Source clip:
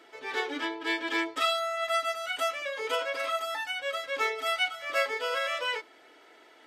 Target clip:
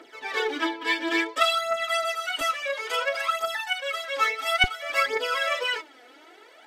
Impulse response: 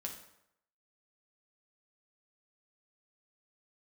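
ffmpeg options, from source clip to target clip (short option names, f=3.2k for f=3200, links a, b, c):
-af "asetnsamples=n=441:p=0,asendcmd='2.41 highpass f 550;4.64 highpass f 160',highpass=190,aphaser=in_gain=1:out_gain=1:delay=4.2:decay=0.66:speed=0.58:type=triangular,volume=2.5dB"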